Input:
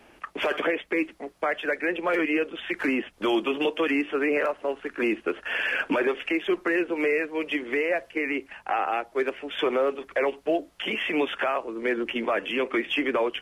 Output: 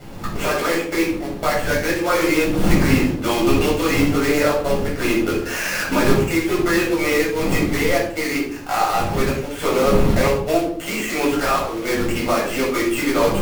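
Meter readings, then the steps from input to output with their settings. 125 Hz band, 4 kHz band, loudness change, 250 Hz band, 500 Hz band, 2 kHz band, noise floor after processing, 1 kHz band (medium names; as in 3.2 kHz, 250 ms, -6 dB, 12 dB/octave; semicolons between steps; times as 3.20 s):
no reading, +6.5 dB, +7.0 dB, +9.0 dB, +6.5 dB, +4.5 dB, -29 dBFS, +8.0 dB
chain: dead-time distortion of 0.11 ms; wind noise 350 Hz -36 dBFS; companded quantiser 4-bit; simulated room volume 730 m³, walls furnished, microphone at 7 m; trim -2.5 dB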